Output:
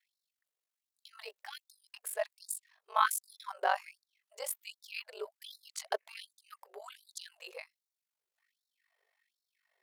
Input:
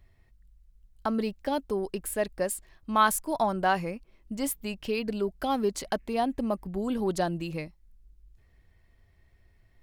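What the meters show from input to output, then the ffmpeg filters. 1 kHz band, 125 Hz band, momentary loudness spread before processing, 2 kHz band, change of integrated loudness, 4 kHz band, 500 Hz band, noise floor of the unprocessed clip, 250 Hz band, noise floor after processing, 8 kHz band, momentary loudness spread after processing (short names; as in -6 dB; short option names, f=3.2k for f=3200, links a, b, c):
-7.5 dB, under -40 dB, 11 LU, -5.5 dB, -8.0 dB, -5.0 dB, -13.0 dB, -63 dBFS, under -35 dB, under -85 dBFS, -4.5 dB, 20 LU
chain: -af "aeval=exprs='val(0)*sin(2*PI*24*n/s)':c=same,afftfilt=real='re*gte(b*sr/1024,380*pow(3700/380,0.5+0.5*sin(2*PI*1.3*pts/sr)))':imag='im*gte(b*sr/1024,380*pow(3700/380,0.5+0.5*sin(2*PI*1.3*pts/sr)))':win_size=1024:overlap=0.75,volume=-2dB"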